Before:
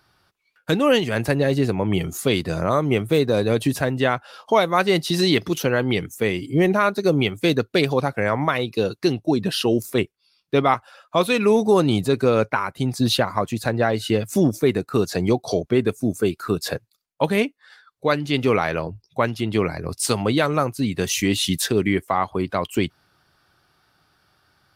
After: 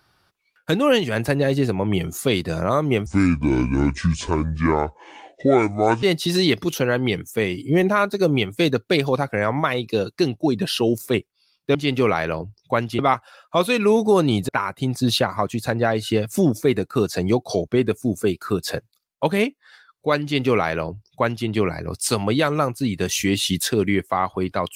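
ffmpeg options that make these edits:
-filter_complex "[0:a]asplit=6[s0][s1][s2][s3][s4][s5];[s0]atrim=end=3.064[s6];[s1]atrim=start=3.06:end=4.87,asetpts=PTS-STARTPTS,asetrate=26901,aresample=44100,atrim=end_sample=130854,asetpts=PTS-STARTPTS[s7];[s2]atrim=start=4.866:end=10.592[s8];[s3]atrim=start=18.208:end=19.452[s9];[s4]atrim=start=10.588:end=12.092[s10];[s5]atrim=start=12.468[s11];[s6][s7]acrossfade=d=0.004:c1=hsin:c2=hsin[s12];[s12][s8]acrossfade=d=0.004:c1=hsin:c2=hsin[s13];[s13][s9]acrossfade=d=0.004:c1=hsin:c2=hsin[s14];[s14][s10]acrossfade=d=0.004:c1=hsin:c2=hsin[s15];[s15][s11]acrossfade=d=0.004:c1=hsin:c2=hsin"

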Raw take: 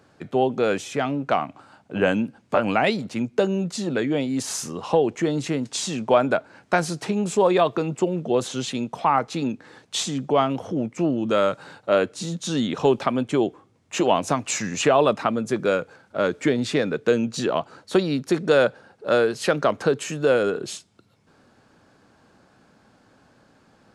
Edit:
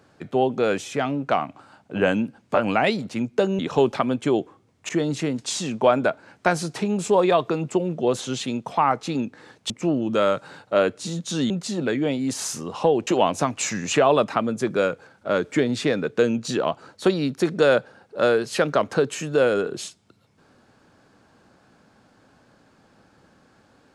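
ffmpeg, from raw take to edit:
-filter_complex "[0:a]asplit=6[s0][s1][s2][s3][s4][s5];[s0]atrim=end=3.592[s6];[s1]atrim=start=12.658:end=13.962[s7];[s2]atrim=start=5.158:end=9.972[s8];[s3]atrim=start=10.858:end=12.662[s9];[s4]atrim=start=3.588:end=5.162[s10];[s5]atrim=start=13.958[s11];[s6][s7]acrossfade=d=0.004:c1=hsin:c2=hsin[s12];[s12][s8]acrossfade=d=0.004:c1=hsin:c2=hsin[s13];[s13][s9]acrossfade=d=0.004:c1=hsin:c2=hsin[s14];[s14][s10]acrossfade=d=0.004:c1=hsin:c2=hsin[s15];[s15][s11]acrossfade=d=0.004:c1=hsin:c2=hsin"

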